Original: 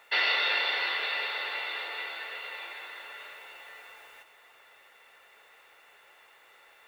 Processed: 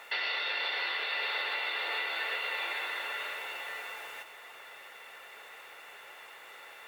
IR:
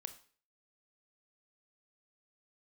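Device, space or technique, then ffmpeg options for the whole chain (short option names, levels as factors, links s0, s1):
podcast mastering chain: -af "highpass=f=88:p=1,acompressor=threshold=0.0112:ratio=2,alimiter=level_in=2.24:limit=0.0631:level=0:latency=1:release=361,volume=0.447,volume=2.66" -ar 44100 -c:a libmp3lame -b:a 128k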